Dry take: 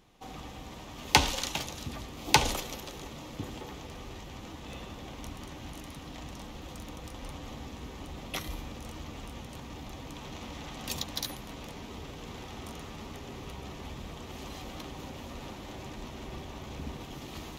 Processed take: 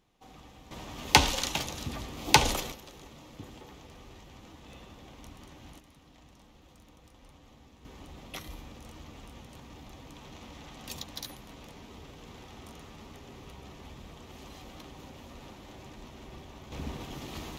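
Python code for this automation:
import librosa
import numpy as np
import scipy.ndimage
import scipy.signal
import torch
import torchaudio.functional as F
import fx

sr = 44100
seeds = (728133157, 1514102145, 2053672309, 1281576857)

y = fx.gain(x, sr, db=fx.steps((0.0, -8.5), (0.71, 2.0), (2.72, -7.0), (5.79, -14.0), (7.85, -5.5), (16.72, 1.5)))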